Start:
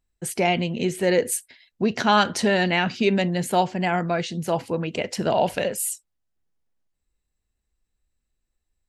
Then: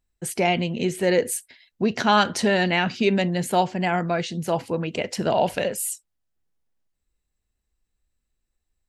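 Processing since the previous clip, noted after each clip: de-esser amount 35%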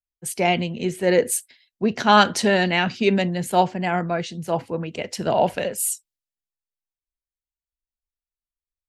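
three-band expander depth 70%; gain +1 dB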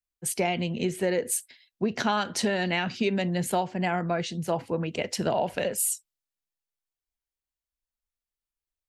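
compressor 12:1, threshold -22 dBFS, peak gain reduction 14 dB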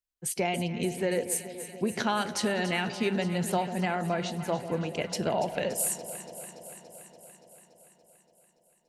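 echo with dull and thin repeats by turns 0.143 s, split 830 Hz, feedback 84%, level -11 dB; gain -2.5 dB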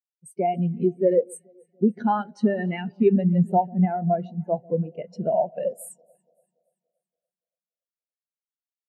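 spectral expander 2.5:1; gain +4.5 dB

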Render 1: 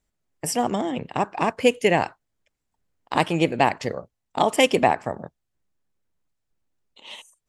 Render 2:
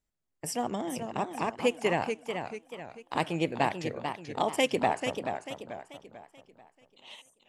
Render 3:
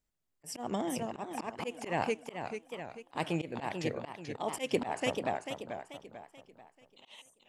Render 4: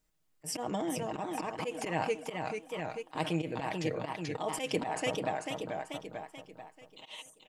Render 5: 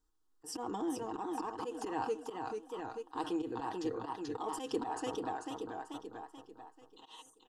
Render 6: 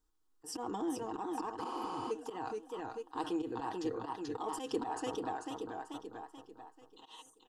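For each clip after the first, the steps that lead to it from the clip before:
warbling echo 0.438 s, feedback 41%, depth 138 cents, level -7 dB; gain -8.5 dB
auto swell 0.162 s
comb 6.4 ms, depth 54%; in parallel at -1.5 dB: negative-ratio compressor -42 dBFS, ratio -1; on the sum: gain -2.5 dB
fixed phaser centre 600 Hz, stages 6; in parallel at -10 dB: soft clip -35.5 dBFS, distortion -11 dB; on the sum: high shelf 6900 Hz -11.5 dB; gain -1.5 dB
spectral repair 1.68–2.08, 310–11000 Hz before

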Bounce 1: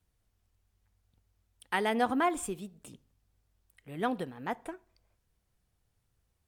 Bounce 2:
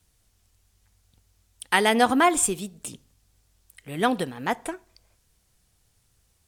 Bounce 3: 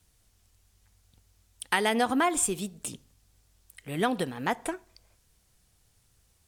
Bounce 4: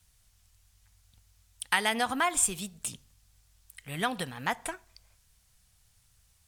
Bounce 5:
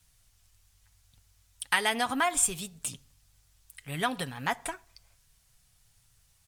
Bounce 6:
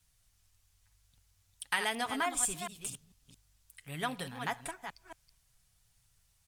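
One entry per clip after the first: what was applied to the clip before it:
bell 7600 Hz +9.5 dB 2.5 oct; gain +8 dB
compressor 2.5:1, threshold -24 dBFS, peak gain reduction 7.5 dB
bell 350 Hz -12 dB 1.7 oct; gain +1.5 dB
comb 7.2 ms, depth 36%
reverse delay 0.223 s, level -8 dB; gain -6 dB

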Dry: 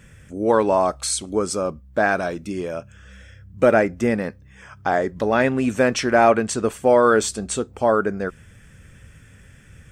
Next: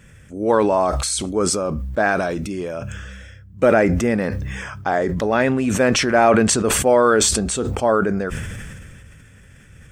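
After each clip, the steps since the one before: sustainer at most 25 dB/s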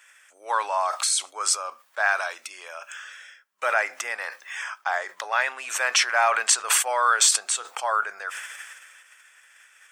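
HPF 890 Hz 24 dB/oct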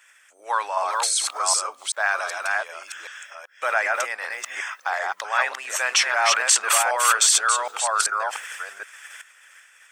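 reverse delay 0.384 s, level -2 dB; harmonic-percussive split percussive +4 dB; gain -2.5 dB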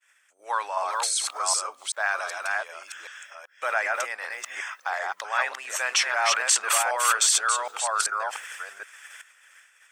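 expander -50 dBFS; gain -3.5 dB

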